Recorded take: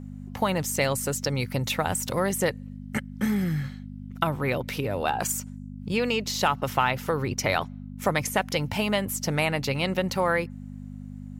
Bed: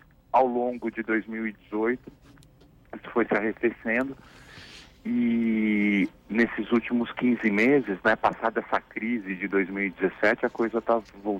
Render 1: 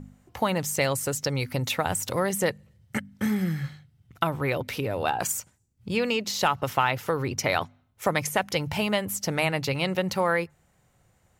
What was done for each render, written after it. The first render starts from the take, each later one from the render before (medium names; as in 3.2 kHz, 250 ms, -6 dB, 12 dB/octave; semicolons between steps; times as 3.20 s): de-hum 50 Hz, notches 5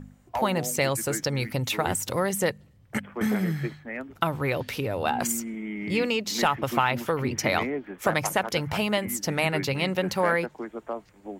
add bed -10 dB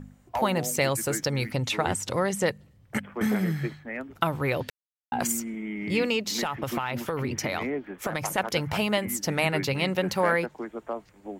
1.51–2.48 s: low-pass 8.4 kHz; 4.70–5.12 s: mute; 6.29–8.38 s: compression, threshold -24 dBFS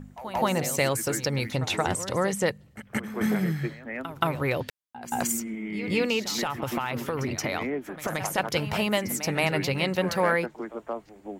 pre-echo 175 ms -13 dB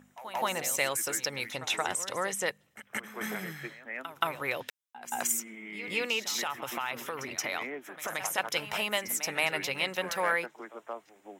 high-pass 1.2 kHz 6 dB/octave; band-stop 4.5 kHz, Q 6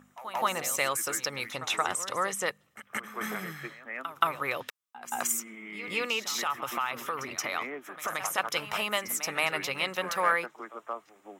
peaking EQ 1.2 kHz +10 dB 0.28 oct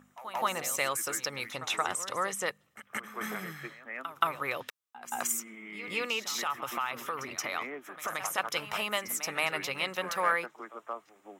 trim -2 dB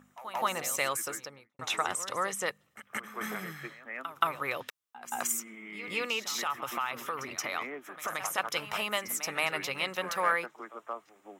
0.94–1.59 s: studio fade out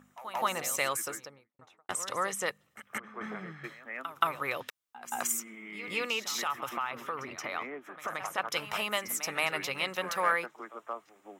1.00–1.89 s: studio fade out; 2.98–3.64 s: tape spacing loss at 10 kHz 28 dB; 6.69–8.52 s: treble shelf 4.2 kHz -11.5 dB